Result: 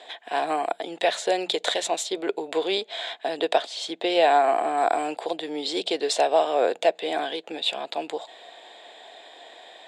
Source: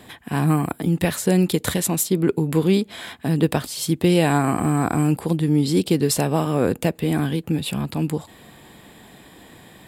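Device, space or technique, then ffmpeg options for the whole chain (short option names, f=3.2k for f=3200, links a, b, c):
phone speaker on a table: -filter_complex "[0:a]bandreject=f=60:t=h:w=6,bandreject=f=120:t=h:w=6,bandreject=f=180:t=h:w=6,asettb=1/sr,asplit=3[a][b][c];[a]atrim=end=3.624[d];[b]atrim=start=3.62:end=4.78,asetpts=PTS-STARTPTS,afade=t=in:d=0.004:c=qsin,afade=t=out:st=1.156:d=0.004:c=qsin,highshelf=f=5.1k:g=-7[e];[c]atrim=start=4.776[f];[d][e]acrossfade=d=0.004:c1=hsin:c2=qsin[g];[g][f]acrossfade=d=0.004:c1=qsin:c2=hsin,highpass=f=450:w=0.5412,highpass=f=450:w=1.3066,equalizer=f=680:t=q:w=4:g=10,equalizer=f=1.2k:t=q:w=4:g=-6,equalizer=f=3.6k:t=q:w=4:g=8,equalizer=f=5.3k:t=q:w=4:g=-4,lowpass=f=6.7k:w=0.5412,lowpass=f=6.7k:w=1.3066"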